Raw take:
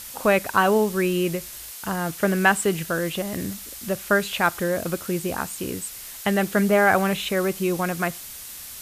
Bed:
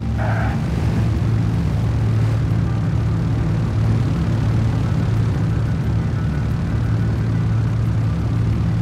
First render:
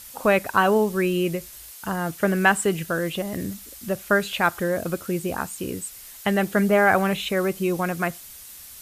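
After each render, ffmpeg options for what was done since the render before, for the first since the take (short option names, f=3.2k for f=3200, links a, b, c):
-af "afftdn=nr=6:nf=-39"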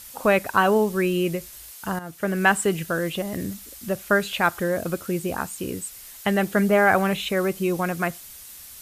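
-filter_complex "[0:a]asplit=2[a][b];[a]atrim=end=1.99,asetpts=PTS-STARTPTS,afade=t=out:st=1.986:d=0.004:c=hsin:silence=0.237137[c];[b]atrim=start=1.99,asetpts=PTS-STARTPTS,afade=t=in:d=0.52:silence=0.237137[d];[c][d]concat=n=2:v=0:a=1"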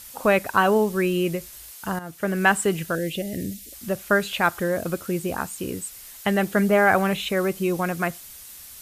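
-filter_complex "[0:a]asettb=1/sr,asplit=3[a][b][c];[a]atrim=end=2.954[d];[b]atrim=start=2.95:end=3.73,asetpts=PTS-STARTPTS,afade=t=in:d=0.004:c=qsin,afade=t=out:st=0.776:d=0.004:c=qsin,asuperstop=centerf=1100:order=4:qfactor=0.79[e];[c]atrim=start=3.726[f];[d][e]acrossfade=d=0.004:c1=hsin:c2=qsin[g];[g][f]acrossfade=d=0.004:c1=qsin:c2=hsin"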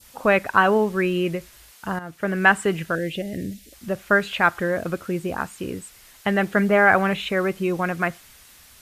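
-af "lowpass=f=3.4k:p=1,adynamicequalizer=threshold=0.02:dfrequency=1800:dqfactor=0.9:tfrequency=1800:tqfactor=0.9:attack=5:release=100:ratio=0.375:range=2.5:mode=boostabove:tftype=bell"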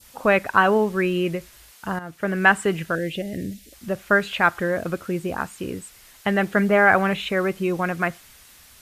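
-af anull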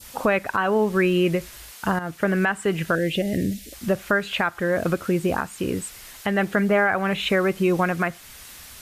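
-filter_complex "[0:a]asplit=2[a][b];[b]acompressor=threshold=-27dB:ratio=6,volume=2dB[c];[a][c]amix=inputs=2:normalize=0,alimiter=limit=-10.5dB:level=0:latency=1:release=417"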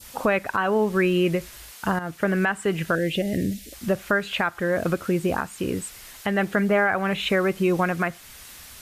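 -af "volume=-1dB"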